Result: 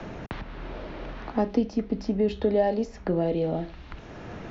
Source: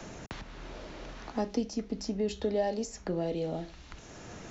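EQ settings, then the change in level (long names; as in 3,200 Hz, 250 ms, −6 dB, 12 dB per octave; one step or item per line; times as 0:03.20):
high-frequency loss of the air 270 metres
+7.5 dB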